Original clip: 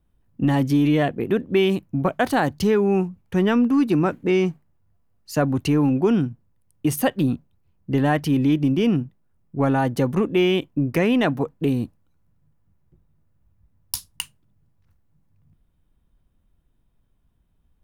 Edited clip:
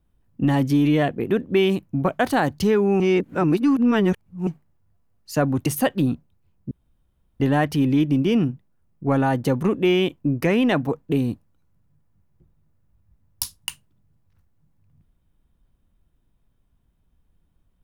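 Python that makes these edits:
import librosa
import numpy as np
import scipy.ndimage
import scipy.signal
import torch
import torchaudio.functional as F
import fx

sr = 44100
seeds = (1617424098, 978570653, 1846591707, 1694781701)

y = fx.edit(x, sr, fx.reverse_span(start_s=3.0, length_s=1.47),
    fx.cut(start_s=5.66, length_s=1.21),
    fx.insert_room_tone(at_s=7.92, length_s=0.69), tone=tone)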